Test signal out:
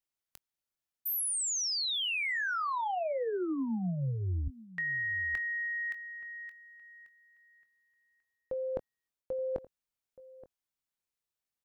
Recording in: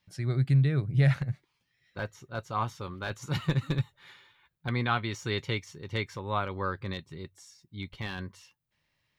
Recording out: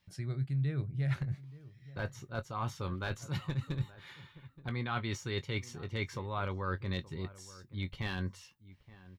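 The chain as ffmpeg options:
-filter_complex "[0:a]lowshelf=f=120:g=6,areverse,acompressor=threshold=-31dB:ratio=12,areverse,asplit=2[a][b];[b]adelay=22,volume=-12.5dB[c];[a][c]amix=inputs=2:normalize=0,asplit=2[d][e];[e]adelay=874.6,volume=-18dB,highshelf=f=4k:g=-19.7[f];[d][f]amix=inputs=2:normalize=0"

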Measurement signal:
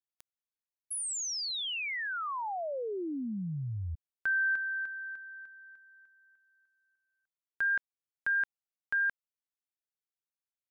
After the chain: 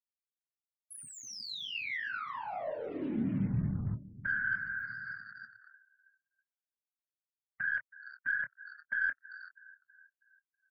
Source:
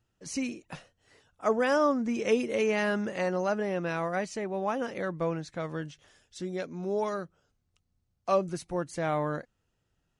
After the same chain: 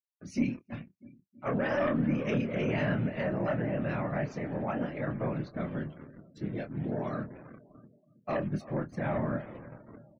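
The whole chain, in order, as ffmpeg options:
-filter_complex "[0:a]afftfilt=real='hypot(re,im)*cos(2*PI*random(0))':imag='hypot(re,im)*sin(2*PI*random(1))':win_size=512:overlap=0.75,equalizer=f=590:t=o:w=0.36:g=10.5,asplit=2[a][b];[b]asplit=4[c][d][e][f];[c]adelay=389,afreqshift=-76,volume=-19dB[g];[d]adelay=778,afreqshift=-152,volume=-25dB[h];[e]adelay=1167,afreqshift=-228,volume=-31dB[i];[f]adelay=1556,afreqshift=-304,volume=-37.1dB[j];[g][h][i][j]amix=inputs=4:normalize=0[k];[a][k]amix=inputs=2:normalize=0,agate=range=-51dB:threshold=-55dB:ratio=3:release=249:detection=rms,acrusher=bits=7:mix=0:aa=0.5,asoftclip=type=tanh:threshold=-22dB,equalizer=f=125:t=o:w=1:g=10,equalizer=f=250:t=o:w=1:g=8,equalizer=f=500:t=o:w=1:g=-7,equalizer=f=2k:t=o:w=1:g=4,equalizer=f=8k:t=o:w=1:g=-9,aeval=exprs='0.126*(cos(1*acos(clip(val(0)/0.126,-1,1)))-cos(1*PI/2))+0.00178*(cos(4*acos(clip(val(0)/0.126,-1,1)))-cos(4*PI/2))':c=same,asplit=2[l][m];[m]adelay=26,volume=-7.5dB[n];[l][n]amix=inputs=2:normalize=0,asplit=2[o][p];[p]aecho=0:1:323|646|969|1292|1615:0.112|0.0628|0.0352|0.0197|0.011[q];[o][q]amix=inputs=2:normalize=0,afftdn=nr=33:nf=-54"

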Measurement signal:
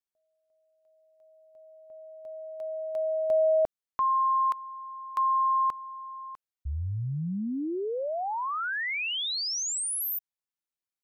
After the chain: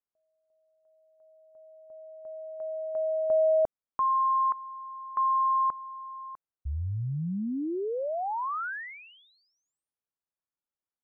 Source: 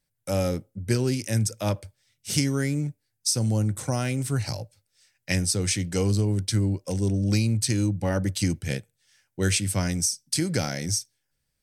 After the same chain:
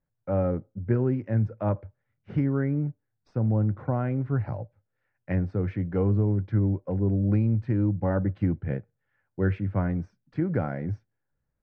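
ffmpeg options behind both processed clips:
-af "lowpass=f=1.5k:w=0.5412,lowpass=f=1.5k:w=1.3066"

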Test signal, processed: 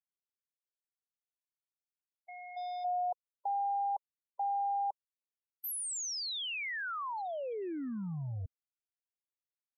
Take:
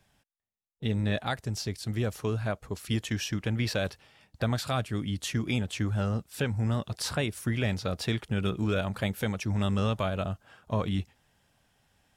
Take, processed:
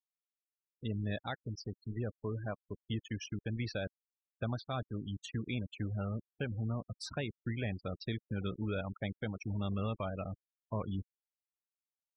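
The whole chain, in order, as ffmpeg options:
-af "aeval=exprs='val(0)*gte(abs(val(0)),0.0178)':c=same,afftfilt=real='re*gte(hypot(re,im),0.0316)':imag='im*gte(hypot(re,im),0.0316)':win_size=1024:overlap=0.75,volume=-8dB"

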